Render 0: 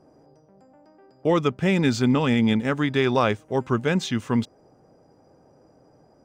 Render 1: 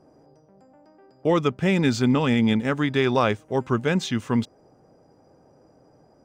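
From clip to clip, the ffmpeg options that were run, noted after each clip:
ffmpeg -i in.wav -af anull out.wav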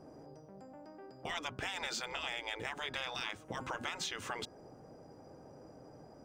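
ffmpeg -i in.wav -af "afftfilt=real='re*lt(hypot(re,im),0.126)':imag='im*lt(hypot(re,im),0.126)':win_size=1024:overlap=0.75,acompressor=threshold=-37dB:ratio=10,bandreject=frequency=182.4:width_type=h:width=4,bandreject=frequency=364.8:width_type=h:width=4,bandreject=frequency=547.2:width_type=h:width=4,bandreject=frequency=729.6:width_type=h:width=4,bandreject=frequency=912:width_type=h:width=4,bandreject=frequency=1094.4:width_type=h:width=4,bandreject=frequency=1276.8:width_type=h:width=4,bandreject=frequency=1459.2:width_type=h:width=4,bandreject=frequency=1641.6:width_type=h:width=4,volume=1.5dB" out.wav

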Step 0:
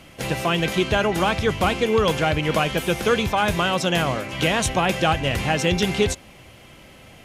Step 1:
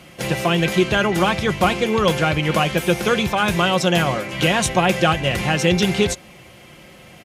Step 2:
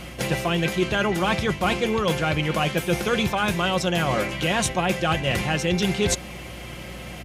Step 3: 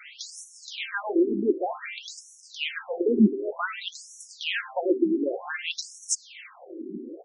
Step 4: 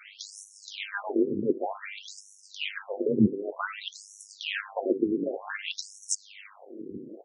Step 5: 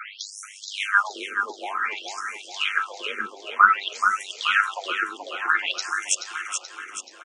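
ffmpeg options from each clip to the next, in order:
ffmpeg -i in.wav -af "highpass=56,aecho=1:1:5.6:0.42,volume=2dB" out.wav
ffmpeg -i in.wav -af "areverse,acompressor=threshold=-26dB:ratio=6,areverse,aeval=exprs='val(0)+0.00501*(sin(2*PI*60*n/s)+sin(2*PI*2*60*n/s)/2+sin(2*PI*3*60*n/s)/3+sin(2*PI*4*60*n/s)/4+sin(2*PI*5*60*n/s)/5)':channel_layout=same,volume=6dB" out.wav
ffmpeg -i in.wav -af "lowshelf=frequency=440:width_type=q:width=1.5:gain=9.5,bandreject=frequency=127.5:width_type=h:width=4,bandreject=frequency=255:width_type=h:width=4,bandreject=frequency=382.5:width_type=h:width=4,bandreject=frequency=510:width_type=h:width=4,bandreject=frequency=637.5:width_type=h:width=4,bandreject=frequency=765:width_type=h:width=4,bandreject=frequency=892.5:width_type=h:width=4,bandreject=frequency=1020:width_type=h:width=4,bandreject=frequency=1147.5:width_type=h:width=4,bandreject=frequency=1275:width_type=h:width=4,bandreject=frequency=1402.5:width_type=h:width=4,bandreject=frequency=1530:width_type=h:width=4,bandreject=frequency=1657.5:width_type=h:width=4,bandreject=frequency=1785:width_type=h:width=4,bandreject=frequency=1912.5:width_type=h:width=4,bandreject=frequency=2040:width_type=h:width=4,bandreject=frequency=2167.5:width_type=h:width=4,bandreject=frequency=2295:width_type=h:width=4,bandreject=frequency=2422.5:width_type=h:width=4,afftfilt=real='re*between(b*sr/1024,300*pow(7900/300,0.5+0.5*sin(2*PI*0.54*pts/sr))/1.41,300*pow(7900/300,0.5+0.5*sin(2*PI*0.54*pts/sr))*1.41)':imag='im*between(b*sr/1024,300*pow(7900/300,0.5+0.5*sin(2*PI*0.54*pts/sr))/1.41,300*pow(7900/300,0.5+0.5*sin(2*PI*0.54*pts/sr))*1.41)':win_size=1024:overlap=0.75" out.wav
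ffmpeg -i in.wav -af "tremolo=f=100:d=0.71" out.wav
ffmpeg -i in.wav -filter_complex "[0:a]highpass=frequency=1300:width_type=q:width=8,asplit=2[link_01][link_02];[link_02]aecho=0:1:429|858|1287|1716|2145|2574|3003:0.501|0.266|0.141|0.0746|0.0395|0.021|0.0111[link_03];[link_01][link_03]amix=inputs=2:normalize=0,volume=5.5dB" out.wav

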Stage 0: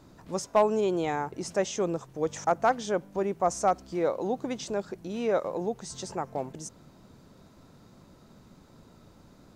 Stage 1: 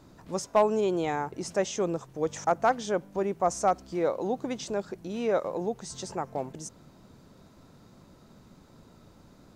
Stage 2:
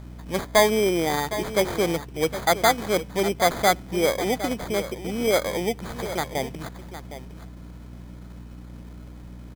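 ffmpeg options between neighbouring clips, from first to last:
ffmpeg -i in.wav -af anull out.wav
ffmpeg -i in.wav -af "acrusher=samples=16:mix=1:aa=0.000001,aeval=exprs='val(0)+0.00631*(sin(2*PI*60*n/s)+sin(2*PI*2*60*n/s)/2+sin(2*PI*3*60*n/s)/3+sin(2*PI*4*60*n/s)/4+sin(2*PI*5*60*n/s)/5)':channel_layout=same,aecho=1:1:761:0.237,volume=5dB" out.wav

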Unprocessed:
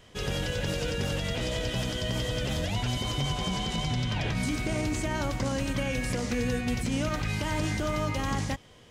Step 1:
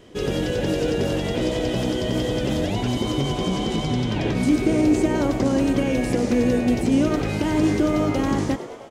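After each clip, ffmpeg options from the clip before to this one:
ffmpeg -i in.wav -filter_complex "[0:a]equalizer=frequency=330:width=1:gain=14.5,asplit=8[link_01][link_02][link_03][link_04][link_05][link_06][link_07][link_08];[link_02]adelay=103,afreqshift=92,volume=-13dB[link_09];[link_03]adelay=206,afreqshift=184,volume=-16.9dB[link_10];[link_04]adelay=309,afreqshift=276,volume=-20.8dB[link_11];[link_05]adelay=412,afreqshift=368,volume=-24.6dB[link_12];[link_06]adelay=515,afreqshift=460,volume=-28.5dB[link_13];[link_07]adelay=618,afreqshift=552,volume=-32.4dB[link_14];[link_08]adelay=721,afreqshift=644,volume=-36.3dB[link_15];[link_01][link_09][link_10][link_11][link_12][link_13][link_14][link_15]amix=inputs=8:normalize=0,volume=1dB" out.wav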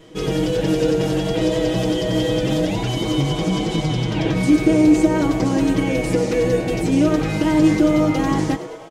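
ffmpeg -i in.wav -af "aecho=1:1:6.3:0.98" out.wav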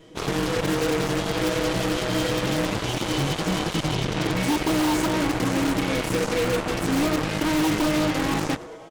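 ffmpeg -i in.wav -af "aeval=exprs='0.266*(abs(mod(val(0)/0.266+3,4)-2)-1)':channel_layout=same,aeval=exprs='0.266*(cos(1*acos(clip(val(0)/0.266,-1,1)))-cos(1*PI/2))+0.0841*(cos(7*acos(clip(val(0)/0.266,-1,1)))-cos(7*PI/2))':channel_layout=same,volume=-5.5dB" out.wav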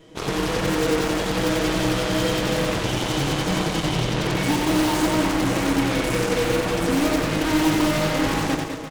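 ffmpeg -i in.wav -af "aecho=1:1:90|202.5|343.1|518.9|738.6:0.631|0.398|0.251|0.158|0.1" out.wav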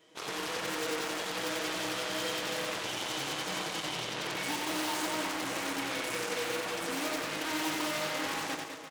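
ffmpeg -i in.wav -af "highpass=frequency=930:poles=1,volume=-7dB" out.wav

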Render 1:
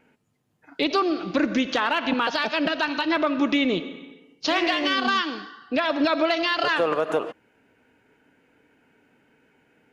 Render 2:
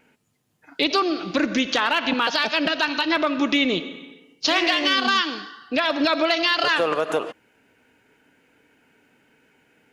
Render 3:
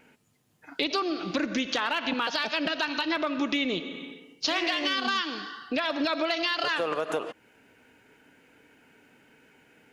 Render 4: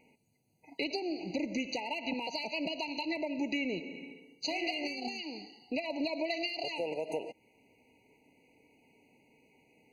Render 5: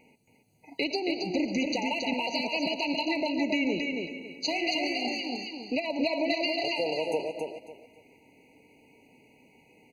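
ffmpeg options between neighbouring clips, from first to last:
ffmpeg -i in.wav -af "highshelf=frequency=2400:gain=8" out.wav
ffmpeg -i in.wav -af "acompressor=threshold=-33dB:ratio=2,volume=1.5dB" out.wav
ffmpeg -i in.wav -af "afftfilt=real='re*eq(mod(floor(b*sr/1024/980),2),0)':imag='im*eq(mod(floor(b*sr/1024/980),2),0)':win_size=1024:overlap=0.75,volume=-5.5dB" out.wav
ffmpeg -i in.wav -af "aecho=1:1:274|548|822:0.631|0.151|0.0363,volume=5dB" out.wav

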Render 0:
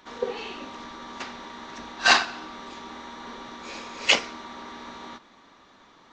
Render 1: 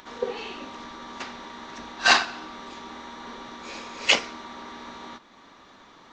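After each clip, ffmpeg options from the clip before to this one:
ffmpeg -i in.wav -af "acompressor=mode=upward:threshold=-45dB:ratio=2.5" out.wav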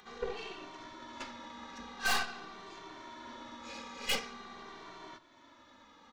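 ffmpeg -i in.wav -filter_complex "[0:a]aeval=exprs='(tanh(15.8*val(0)+0.7)-tanh(0.7))/15.8':channel_layout=same,asplit=2[link_01][link_02];[link_02]adelay=2.1,afreqshift=-0.46[link_03];[link_01][link_03]amix=inputs=2:normalize=1,volume=-1dB" out.wav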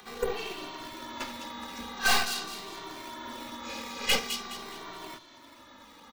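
ffmpeg -i in.wav -filter_complex "[0:a]acrossover=split=110|1500|2500[link_01][link_02][link_03][link_04];[link_02]acrusher=samples=8:mix=1:aa=0.000001:lfo=1:lforange=12.8:lforate=2.4[link_05];[link_04]aecho=1:1:209|418|627|836:0.562|0.191|0.065|0.0221[link_06];[link_01][link_05][link_03][link_06]amix=inputs=4:normalize=0,volume=7dB" out.wav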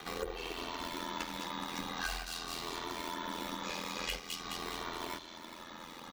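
ffmpeg -i in.wav -af "acompressor=threshold=-40dB:ratio=10,aeval=exprs='val(0)*sin(2*PI*42*n/s)':channel_layout=same,volume=7dB" out.wav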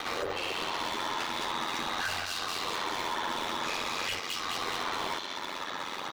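ffmpeg -i in.wav -filter_complex "[0:a]aeval=exprs='val(0)*sin(2*PI*50*n/s)':channel_layout=same,asplit=2[link_01][link_02];[link_02]highpass=frequency=720:poles=1,volume=26dB,asoftclip=type=tanh:threshold=-23dB[link_03];[link_01][link_03]amix=inputs=2:normalize=0,lowpass=frequency=4000:poles=1,volume=-6dB" out.wav

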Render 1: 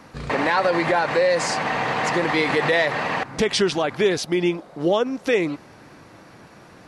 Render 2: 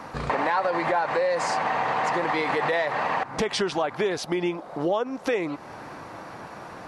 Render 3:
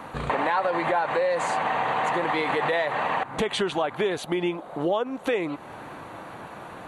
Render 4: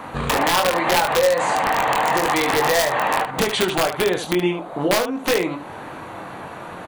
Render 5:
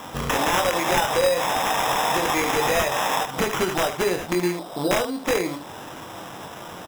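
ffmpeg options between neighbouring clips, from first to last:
ffmpeg -i in.wav -af "equalizer=frequency=900:width=0.8:gain=9.5,acompressor=threshold=-29dB:ratio=2.5,volume=1.5dB" out.wav
ffmpeg -i in.wav -af "highshelf=frequency=6500:gain=-4.5,aexciter=amount=1:drive=4.1:freq=2800" out.wav
ffmpeg -i in.wav -filter_complex "[0:a]aeval=exprs='(mod(6.31*val(0)+1,2)-1)/6.31':channel_layout=same,asplit=2[link_01][link_02];[link_02]aecho=0:1:22|74:0.531|0.355[link_03];[link_01][link_03]amix=inputs=2:normalize=0,volume=4.5dB" out.wav
ffmpeg -i in.wav -af "acrusher=samples=10:mix=1:aa=0.000001,volume=-3dB" out.wav

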